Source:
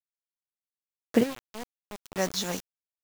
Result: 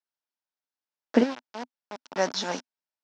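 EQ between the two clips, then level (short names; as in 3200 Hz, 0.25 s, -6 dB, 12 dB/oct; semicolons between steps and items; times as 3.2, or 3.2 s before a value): speaker cabinet 240–5600 Hz, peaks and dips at 250 Hz +7 dB, 620 Hz +5 dB, 900 Hz +8 dB, 1500 Hz +6 dB, 5400 Hz +5 dB; 0.0 dB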